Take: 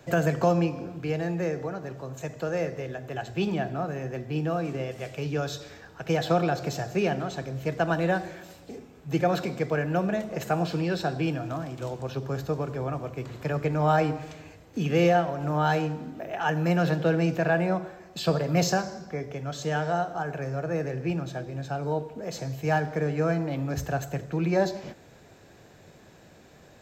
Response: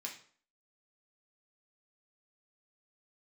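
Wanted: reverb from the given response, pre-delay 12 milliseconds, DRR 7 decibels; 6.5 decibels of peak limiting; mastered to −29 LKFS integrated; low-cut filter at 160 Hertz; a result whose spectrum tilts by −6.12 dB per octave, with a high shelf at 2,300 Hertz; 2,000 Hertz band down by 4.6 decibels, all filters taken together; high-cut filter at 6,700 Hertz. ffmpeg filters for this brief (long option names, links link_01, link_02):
-filter_complex "[0:a]highpass=160,lowpass=6700,equalizer=frequency=2000:width_type=o:gain=-4.5,highshelf=frequency=2300:gain=-3.5,alimiter=limit=-17.5dB:level=0:latency=1,asplit=2[link_01][link_02];[1:a]atrim=start_sample=2205,adelay=12[link_03];[link_02][link_03]afir=irnorm=-1:irlink=0,volume=-5.5dB[link_04];[link_01][link_04]amix=inputs=2:normalize=0,volume=1.5dB"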